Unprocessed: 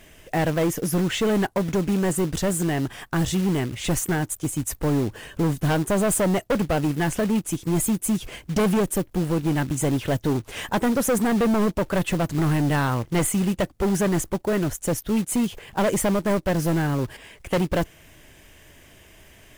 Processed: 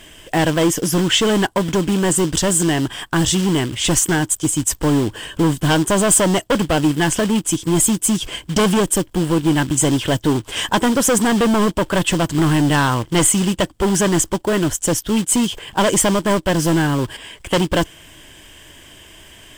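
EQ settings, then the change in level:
thirty-one-band graphic EQ 315 Hz +5 dB, 1,000 Hz +6 dB, 1,600 Hz +4 dB, 3,150 Hz +11 dB, 5,000 Hz +4 dB, 8,000 Hz +9 dB
dynamic equaliser 5,900 Hz, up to +5 dB, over −38 dBFS, Q 1.7
+4.0 dB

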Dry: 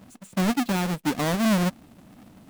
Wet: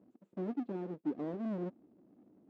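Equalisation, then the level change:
resonant band-pass 360 Hz, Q 3
high-frequency loss of the air 63 metres
−5.0 dB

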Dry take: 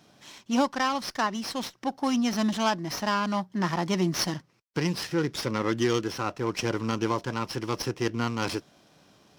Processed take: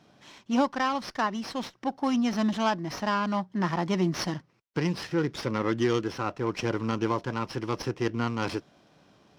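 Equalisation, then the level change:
low-pass filter 3,000 Hz 6 dB per octave
0.0 dB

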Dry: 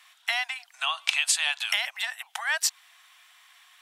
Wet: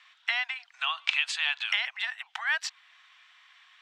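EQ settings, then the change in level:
high-pass filter 1,100 Hz 12 dB per octave
dynamic equaliser 5,800 Hz, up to −3 dB, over −42 dBFS, Q 1.3
high-frequency loss of the air 170 metres
+2.0 dB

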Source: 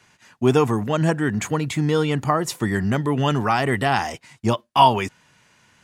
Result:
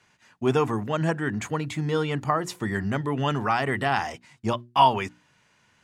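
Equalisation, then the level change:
mains-hum notches 60/120/180/240/300/360 Hz
dynamic equaliser 1,500 Hz, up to +3 dB, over −29 dBFS, Q 0.7
high-shelf EQ 8,600 Hz −7 dB
−5.5 dB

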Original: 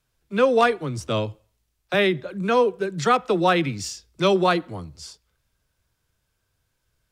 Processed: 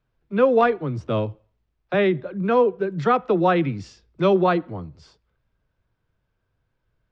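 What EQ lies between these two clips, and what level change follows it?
head-to-tape spacing loss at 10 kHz 34 dB
parametric band 71 Hz −6 dB 0.5 octaves
+3.0 dB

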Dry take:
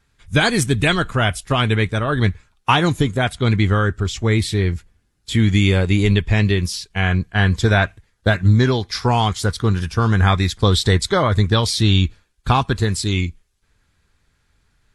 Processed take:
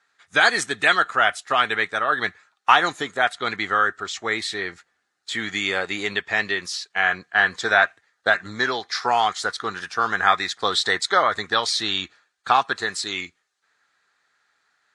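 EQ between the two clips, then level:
loudspeaker in its box 460–9,000 Hz, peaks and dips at 750 Hz +7 dB, 1,300 Hz +9 dB, 1,800 Hz +9 dB, 4,100 Hz +5 dB, 6,500 Hz +3 dB
−4.5 dB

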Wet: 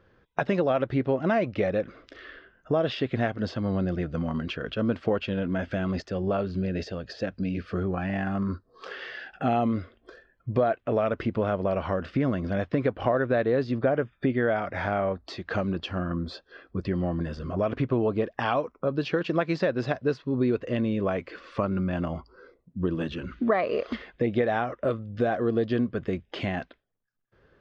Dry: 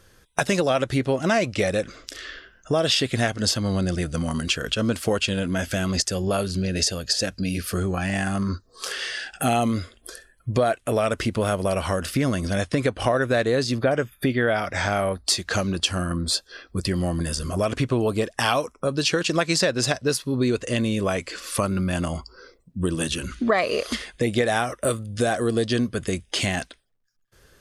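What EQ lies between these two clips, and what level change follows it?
high-frequency loss of the air 150 metres
head-to-tape spacing loss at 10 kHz 30 dB
low-shelf EQ 82 Hz −12 dB
0.0 dB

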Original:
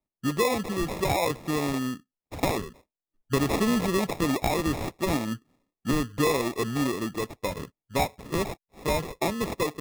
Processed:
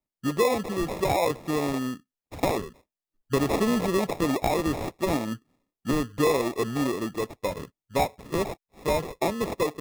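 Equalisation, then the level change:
dynamic equaliser 550 Hz, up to +5 dB, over −36 dBFS, Q 0.77
−2.0 dB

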